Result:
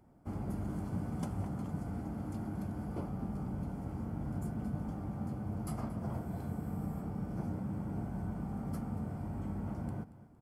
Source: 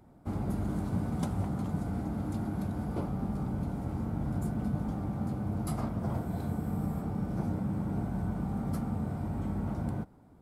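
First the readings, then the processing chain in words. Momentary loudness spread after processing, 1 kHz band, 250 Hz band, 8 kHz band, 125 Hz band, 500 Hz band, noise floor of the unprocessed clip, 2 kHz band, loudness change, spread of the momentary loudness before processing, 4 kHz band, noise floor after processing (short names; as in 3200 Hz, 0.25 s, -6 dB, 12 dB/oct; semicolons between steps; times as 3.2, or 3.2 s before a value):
2 LU, -5.5 dB, -5.5 dB, -5.5 dB, -5.5 dB, -5.5 dB, -57 dBFS, -5.5 dB, -5.5 dB, 2 LU, n/a, -54 dBFS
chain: notch 3800 Hz, Q 5.2; on a send: feedback echo 0.23 s, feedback 36%, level -17 dB; on the sum: gain -5.5 dB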